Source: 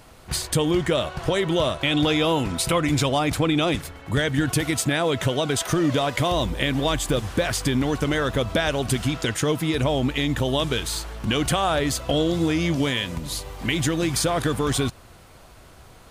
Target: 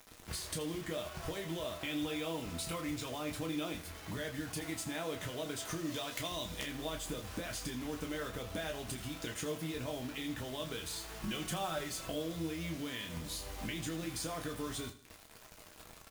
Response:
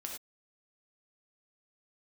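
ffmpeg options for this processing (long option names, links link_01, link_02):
-filter_complex "[0:a]asettb=1/sr,asplit=3[link_01][link_02][link_03];[link_01]atrim=end=5.864[link_04];[link_02]atrim=start=5.86:end=6.62,asetpts=PTS-STARTPTS,afade=type=in:duration=0.004:curve=qsin,afade=type=out:start_time=0.756:duration=0.004:curve=qsin,equalizer=frequency=5800:width_type=o:width=2.3:gain=10.5[link_05];[link_03]atrim=start=6.616[link_06];[link_04][link_05]acrossfade=duration=0.004:curve1=hsin:curve2=qsin[link_07];[link_07][link_06]acrossfade=duration=0.004:curve1=qsin:curve2=hsin,aeval=exprs='(mod(2.37*val(0)+1,2)-1)/2.37':channel_layout=same,acompressor=threshold=-32dB:ratio=4,acrusher=bits=6:mix=0:aa=0.000001,asettb=1/sr,asplit=3[link_08][link_09][link_10];[link_08]atrim=end=4.464[link_11];[link_09]atrim=start=4.46:end=5,asetpts=PTS-STARTPTS,afade=type=in:duration=0.004:curve=qsin,afade=type=out:start_time=0.536:duration=0.004:curve=qsin,equalizer=frequency=850:width_type=o:width=0.37:gain=6.5[link_12];[link_10]atrim=start=4.996[link_13];[link_11][link_12]acrossfade=duration=0.004:curve1=hsin:curve2=qsin[link_14];[link_14][link_13]acrossfade=duration=0.004:curve1=qsin:curve2=hsin,asettb=1/sr,asplit=3[link_15][link_16][link_17];[link_15]atrim=end=11.224[link_18];[link_16]atrim=start=11.22:end=12.08,asetpts=PTS-STARTPTS,afade=type=in:duration=0.004:curve=qsin,afade=type=out:start_time=0.856:duration=0.004:curve=qsin,aecho=1:1:5.4:0.75,atrim=end_sample=37926[link_19];[link_17]atrim=start=12.076[link_20];[link_18][link_19]acrossfade=duration=0.004:curve1=hsin:curve2=qsin[link_21];[link_21][link_20]acrossfade=duration=0.004:curve1=qsin:curve2=hsin,aecho=1:1:80|160|240|320:0.188|0.0772|0.0317|0.013[link_22];[1:a]atrim=start_sample=2205,atrim=end_sample=3087,asetrate=83790,aresample=44100[link_23];[link_22][link_23]afir=irnorm=-1:irlink=0,volume=1.5dB"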